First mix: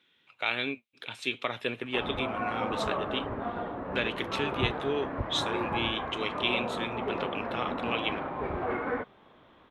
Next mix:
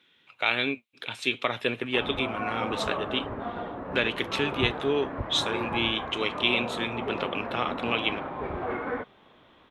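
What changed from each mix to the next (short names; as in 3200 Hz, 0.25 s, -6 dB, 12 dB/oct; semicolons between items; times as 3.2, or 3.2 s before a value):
speech +4.5 dB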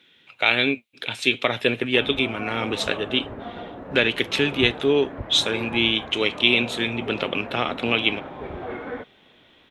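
speech +7.0 dB; master: add bell 1100 Hz -6 dB 0.7 oct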